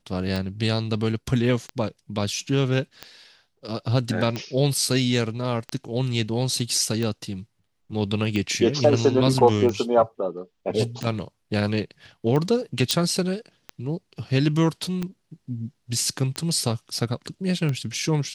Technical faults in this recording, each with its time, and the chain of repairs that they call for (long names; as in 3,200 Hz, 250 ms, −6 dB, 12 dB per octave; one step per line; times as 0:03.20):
scratch tick 45 rpm
0:12.91: click −6 dBFS
0:15.02: drop-out 2.1 ms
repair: click removal
repair the gap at 0:15.02, 2.1 ms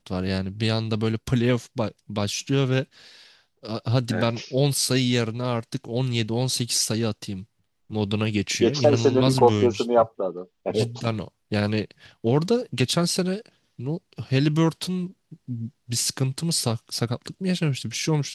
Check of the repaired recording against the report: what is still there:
none of them is left